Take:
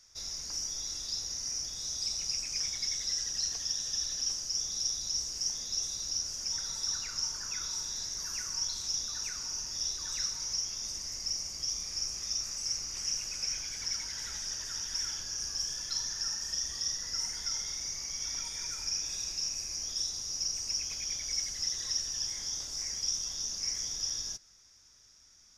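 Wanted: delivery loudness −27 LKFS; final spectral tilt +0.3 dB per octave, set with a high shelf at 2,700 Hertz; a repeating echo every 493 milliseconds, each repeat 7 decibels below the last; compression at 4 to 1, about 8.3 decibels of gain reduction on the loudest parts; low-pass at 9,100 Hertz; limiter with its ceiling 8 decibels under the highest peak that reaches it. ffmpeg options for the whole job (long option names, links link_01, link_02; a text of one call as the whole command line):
ffmpeg -i in.wav -af "lowpass=9100,highshelf=frequency=2700:gain=-6,acompressor=threshold=-44dB:ratio=4,alimiter=level_in=16.5dB:limit=-24dB:level=0:latency=1,volume=-16.5dB,aecho=1:1:493|986|1479|1972|2465:0.447|0.201|0.0905|0.0407|0.0183,volume=19dB" out.wav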